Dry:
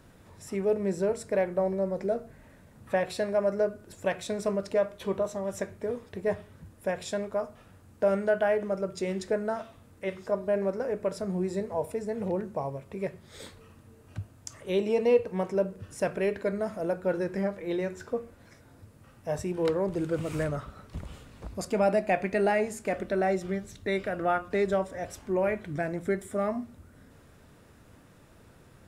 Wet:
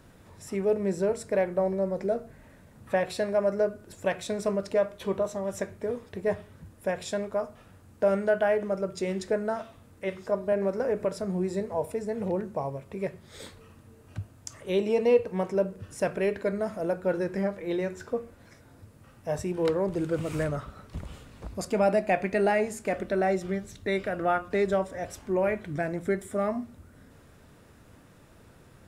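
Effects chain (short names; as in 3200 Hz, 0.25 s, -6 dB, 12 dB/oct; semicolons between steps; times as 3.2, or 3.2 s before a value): 10.52–11.05 three-band squash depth 100%; gain +1 dB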